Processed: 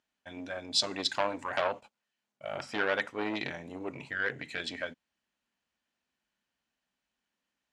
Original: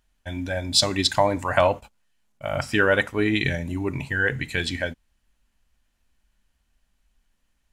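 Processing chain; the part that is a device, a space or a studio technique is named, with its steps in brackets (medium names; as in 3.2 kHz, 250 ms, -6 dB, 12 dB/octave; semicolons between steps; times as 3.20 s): public-address speaker with an overloaded transformer (transformer saturation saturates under 2.1 kHz; band-pass 220–6400 Hz); trim -7 dB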